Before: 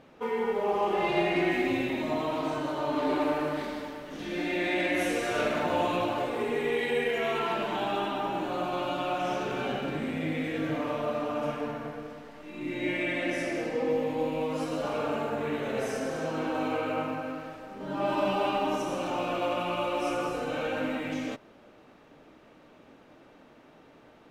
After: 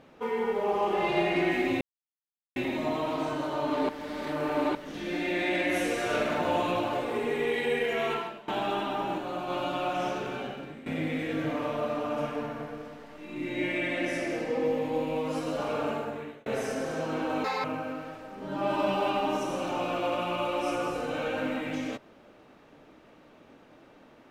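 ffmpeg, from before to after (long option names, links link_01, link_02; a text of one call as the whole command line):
ffmpeg -i in.wav -filter_complex "[0:a]asplit=11[link_01][link_02][link_03][link_04][link_05][link_06][link_07][link_08][link_09][link_10][link_11];[link_01]atrim=end=1.81,asetpts=PTS-STARTPTS,afade=type=out:start_time=1.806:duration=0.004:curve=hsin,apad=pad_dur=0.75[link_12];[link_02]atrim=start=1.81:end=3.142,asetpts=PTS-STARTPTS,afade=type=in:duration=0.004:curve=hsin[link_13];[link_03]atrim=start=3.138:end=4.002,asetpts=PTS-STARTPTS,areverse[link_14];[link_04]atrim=start=3.998:end=7.73,asetpts=PTS-STARTPTS,afade=type=out:start_time=3.382:duration=0.35:curve=qua:silence=0.112202[link_15];[link_05]atrim=start=7.73:end=8.432,asetpts=PTS-STARTPTS,afade=type=in:duration=0.004:curve=hsin:silence=0.112202[link_16];[link_06]atrim=start=8.428:end=8.752,asetpts=PTS-STARTPTS,volume=-3dB[link_17];[link_07]atrim=start=8.748:end=10.11,asetpts=PTS-STARTPTS,afade=type=out:start_time=0.542:duration=0.82:silence=0.158489[link_18];[link_08]atrim=start=10.11:end=15.71,asetpts=PTS-STARTPTS,afade=type=in:duration=0.004:curve=hsin:silence=0.158489,afade=type=out:start_time=5.04:duration=0.56[link_19];[link_09]atrim=start=15.71:end=16.694,asetpts=PTS-STARTPTS,afade=type=in:duration=0.004:curve=hsin[link_20];[link_10]atrim=start=16.69:end=17.03,asetpts=PTS-STARTPTS,asetrate=74088,aresample=44100[link_21];[link_11]atrim=start=17.026[link_22];[link_12][link_13]concat=n=2:v=0:a=1[link_23];[link_23][link_14]acrossfade=duration=0.004:curve1=hsin:curve2=hsin[link_24];[link_15][link_16]concat=n=2:v=0:a=1[link_25];[link_24][link_25]acrossfade=duration=0.004:curve1=hsin:curve2=hsin[link_26];[link_26][link_17]acrossfade=duration=0.004:curve1=hsin:curve2=hsin[link_27];[link_18][link_19][link_20]concat=n=3:v=0:a=1[link_28];[link_27][link_28]acrossfade=duration=0.004:curve1=hsin:curve2=hsin[link_29];[link_29][link_21]acrossfade=duration=0.004:curve1=hsin:curve2=hsin[link_30];[link_30][link_22]acrossfade=duration=0.004:curve1=hsin:curve2=hsin" out.wav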